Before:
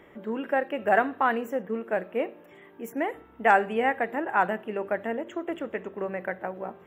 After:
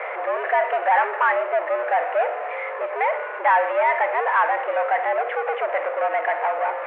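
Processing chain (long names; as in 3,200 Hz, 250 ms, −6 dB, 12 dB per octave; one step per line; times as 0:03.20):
power curve on the samples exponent 0.35
single-sideband voice off tune +140 Hz 380–2,200 Hz
level −3.5 dB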